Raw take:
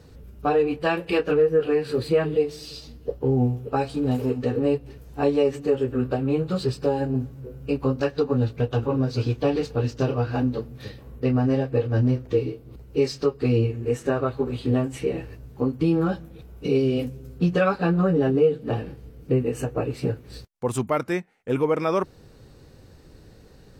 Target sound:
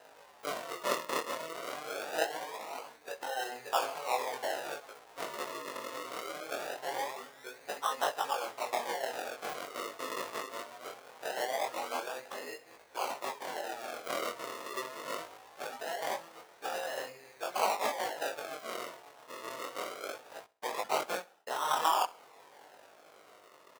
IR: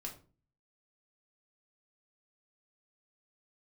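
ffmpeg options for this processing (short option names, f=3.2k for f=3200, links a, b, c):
-filter_complex "[0:a]afftfilt=real='re*lt(hypot(re,im),0.251)':imag='im*lt(hypot(re,im),0.251)':win_size=1024:overlap=0.75,acrossover=split=2900[a][b];[a]crystalizer=i=9:c=0[c];[b]asoftclip=type=tanh:threshold=-29.5dB[d];[c][d]amix=inputs=2:normalize=0,acrusher=samples=38:mix=1:aa=0.000001:lfo=1:lforange=38:lforate=0.22,highpass=f=710:t=q:w=1.6,flanger=delay=18.5:depth=6.5:speed=0.39,aecho=1:1:66|132|198:0.0841|0.032|0.0121"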